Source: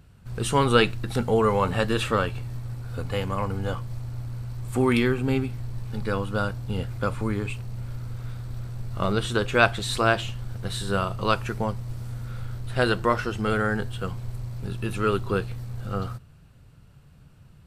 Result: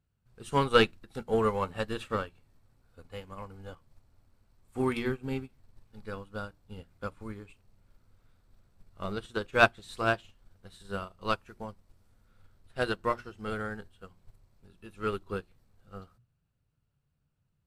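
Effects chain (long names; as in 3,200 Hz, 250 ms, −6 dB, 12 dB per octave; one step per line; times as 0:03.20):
mains-hum notches 60/120/180/240/300/360 Hz
in parallel at −4 dB: soft clipping −18.5 dBFS, distortion −11 dB
on the sum: expander for the loud parts 2.5 to 1, over −30 dBFS
level −2.5 dB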